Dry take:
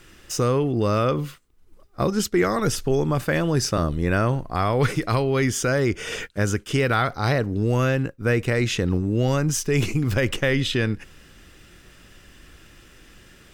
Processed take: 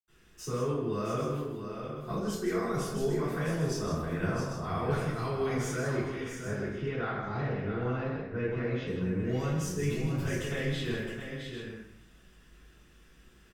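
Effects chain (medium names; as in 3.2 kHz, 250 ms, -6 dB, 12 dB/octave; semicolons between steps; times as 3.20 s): 6.00–8.79 s: distance through air 270 m; multi-tap echo 158/666/794 ms -8.5/-7.5/-11 dB; reverberation RT60 0.65 s, pre-delay 76 ms; trim +5.5 dB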